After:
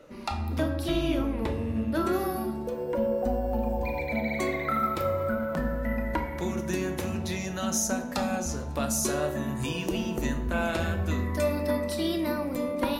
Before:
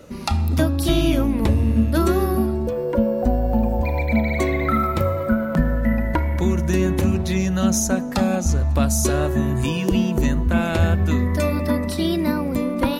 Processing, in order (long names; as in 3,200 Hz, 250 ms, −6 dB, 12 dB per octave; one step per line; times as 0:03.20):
bass and treble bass −9 dB, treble −8 dB, from 0:02.12 treble +1 dB
convolution reverb RT60 0.75 s, pre-delay 7 ms, DRR 5.5 dB
level −6.5 dB